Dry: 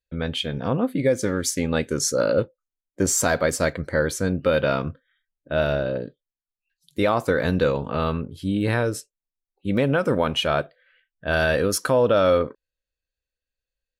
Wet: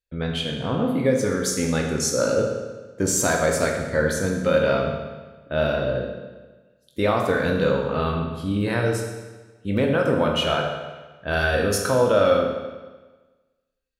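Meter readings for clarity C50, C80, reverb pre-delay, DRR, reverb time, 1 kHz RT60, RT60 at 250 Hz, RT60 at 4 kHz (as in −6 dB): 3.5 dB, 5.5 dB, 15 ms, 0.5 dB, 1.3 s, 1.3 s, 1.3 s, 1.2 s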